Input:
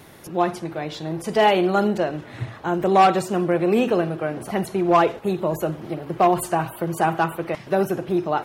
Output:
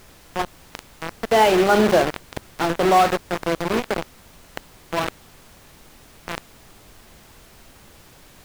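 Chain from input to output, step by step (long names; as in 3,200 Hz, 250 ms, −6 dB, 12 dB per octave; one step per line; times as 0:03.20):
source passing by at 0:02.03, 12 m/s, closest 4.4 metres
in parallel at +1 dB: brickwall limiter −20.5 dBFS, peak gain reduction 10.5 dB
on the sum: high-pass filter 180 Hz 12 dB per octave
mains-hum notches 50/100/150/200/250/300/350/400 Hz
bit reduction 4 bits
high-shelf EQ 4,700 Hz −11 dB
reversed playback
upward compression, threshold −27 dBFS
reversed playback
background noise pink −52 dBFS
saturating transformer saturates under 310 Hz
level +4 dB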